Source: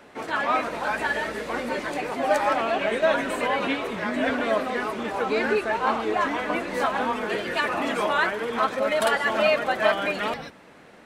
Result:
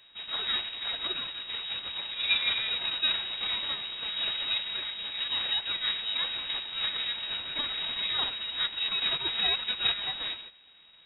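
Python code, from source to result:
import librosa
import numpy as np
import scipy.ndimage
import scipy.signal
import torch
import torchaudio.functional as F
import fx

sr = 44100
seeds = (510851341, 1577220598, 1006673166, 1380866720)

y = np.abs(x)
y = fx.small_body(y, sr, hz=(300.0, 1400.0), ring_ms=45, db=12, at=(2.13, 2.7))
y = fx.freq_invert(y, sr, carrier_hz=3800)
y = y * 10.0 ** (-8.5 / 20.0)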